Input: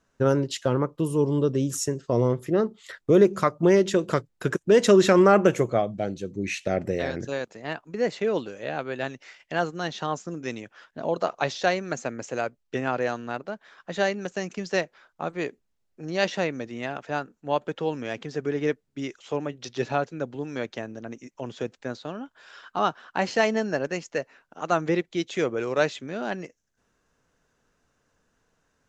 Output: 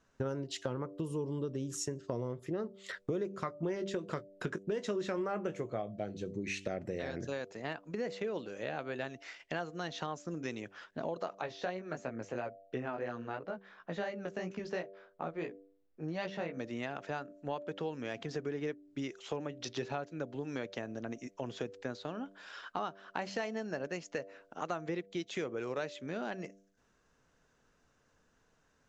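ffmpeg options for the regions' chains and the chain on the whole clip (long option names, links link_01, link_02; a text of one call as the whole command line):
ffmpeg -i in.wav -filter_complex "[0:a]asettb=1/sr,asplit=3[link_01][link_02][link_03];[link_01]atrim=end=3.324[link_04];[link_02]atrim=start=3.32:end=6.23,asetpts=PTS-STARTPTS,afade=type=in:duration=0.004:curve=qsin,afade=type=out:start_time=2.906:duration=0.004:curve=qsin,highshelf=frequency=8300:gain=-9,asplit=2[link_05][link_06];[link_06]adelay=19,volume=-11dB[link_07];[link_05][link_07]amix=inputs=2:normalize=0,atrim=end_sample=128331[link_08];[link_03]atrim=start=6.226[link_09];[link_04][link_08]acrossfade=duration=0.004:curve1=hsin:curve2=qsin[link_10];[link_10][link_09]acrossfade=duration=0.004:curve1=qsin:curve2=hsin,asettb=1/sr,asplit=3[link_11][link_12][link_13];[link_11]atrim=end=11.414[link_14];[link_12]atrim=start=11.41:end=16.59,asetpts=PTS-STARTPTS,afade=type=in:duration=0.004:curve=qsin,afade=type=out:start_time=5.176:duration=0.004:curve=qsin,aemphasis=mode=reproduction:type=75fm,flanger=delay=16:depth=3.3:speed=2.9[link_15];[link_13]atrim=start=16.586[link_16];[link_14][link_15]acrossfade=duration=0.004:curve1=hsin:curve2=qsin[link_17];[link_17][link_16]acrossfade=duration=0.004:curve1=qsin:curve2=hsin,lowpass=8200,bandreject=frequency=97.69:width_type=h:width=4,bandreject=frequency=195.38:width_type=h:width=4,bandreject=frequency=293.07:width_type=h:width=4,bandreject=frequency=390.76:width_type=h:width=4,bandreject=frequency=488.45:width_type=h:width=4,bandreject=frequency=586.14:width_type=h:width=4,bandreject=frequency=683.83:width_type=h:width=4,acompressor=threshold=-34dB:ratio=5,volume=-1dB" out.wav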